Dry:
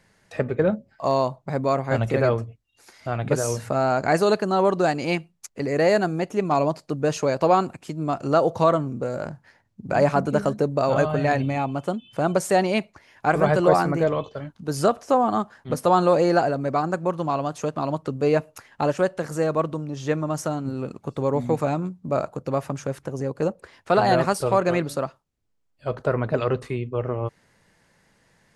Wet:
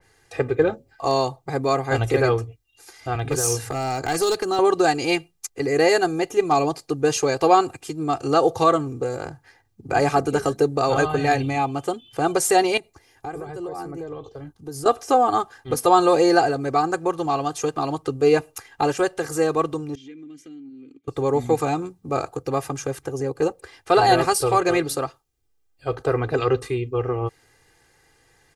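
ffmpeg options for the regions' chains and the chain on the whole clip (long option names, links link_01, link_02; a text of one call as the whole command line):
ffmpeg -i in.wav -filter_complex "[0:a]asettb=1/sr,asplit=3[link_01][link_02][link_03];[link_01]atrim=end=3.154[link_04];[link_02]atrim=start=3.15:end=4.59,asetpts=PTS-STARTPTS,afade=type=in:duration=0.004:curve=qsin,afade=type=out:start_time=1.436:duration=0.004:curve=qsin,acrossover=split=240|3000[link_05][link_06][link_07];[link_06]acompressor=threshold=-24dB:ratio=3:attack=3.2:release=140:knee=2.83:detection=peak[link_08];[link_05][link_08][link_07]amix=inputs=3:normalize=0,asoftclip=type=hard:threshold=-18dB[link_09];[link_03]atrim=start=4.586[link_10];[link_04][link_09]acrossfade=duration=0.004:curve1=hsin:curve2=qsin[link_11];[link_11][link_10]acrossfade=duration=0.004:curve1=qsin:curve2=hsin,asettb=1/sr,asplit=3[link_12][link_13][link_14];[link_12]atrim=end=12.774[link_15];[link_13]atrim=start=12.77:end=14.86,asetpts=PTS-STARTPTS,afade=type=in:duration=0.004:curve=qsin,afade=type=out:start_time=2.086:duration=0.004:curve=qsin,equalizer=frequency=2200:width_type=o:width=2.9:gain=-9,acompressor=threshold=-31dB:ratio=6:attack=3.2:release=140:knee=1:detection=peak[link_16];[link_14]atrim=start=14.856[link_17];[link_15][link_16]acrossfade=duration=0.004:curve1=hsin:curve2=qsin[link_18];[link_18][link_17]acrossfade=duration=0.004:curve1=qsin:curve2=hsin,asettb=1/sr,asplit=3[link_19][link_20][link_21];[link_19]atrim=end=19.954[link_22];[link_20]atrim=start=19.95:end=21.08,asetpts=PTS-STARTPTS,afade=type=in:duration=0.004:curve=qsin,afade=type=out:start_time=1.126:duration=0.004:curve=qsin,asplit=3[link_23][link_24][link_25];[link_23]bandpass=frequency=270:width_type=q:width=8,volume=0dB[link_26];[link_24]bandpass=frequency=2290:width_type=q:width=8,volume=-6dB[link_27];[link_25]bandpass=frequency=3010:width_type=q:width=8,volume=-9dB[link_28];[link_26][link_27][link_28]amix=inputs=3:normalize=0,highshelf=frequency=6000:gain=5.5,acompressor=threshold=-40dB:ratio=4:attack=3.2:release=140:knee=1:detection=peak[link_29];[link_21]atrim=start=21.076[link_30];[link_22][link_29]acrossfade=duration=0.004:curve1=hsin:curve2=qsin[link_31];[link_31][link_30]acrossfade=duration=0.004:curve1=qsin:curve2=hsin,highshelf=frequency=8500:gain=7,aecho=1:1:2.5:0.85,adynamicequalizer=threshold=0.0224:dfrequency=2600:dqfactor=0.7:tfrequency=2600:tqfactor=0.7:attack=5:release=100:ratio=0.375:range=2:mode=boostabove:tftype=highshelf" out.wav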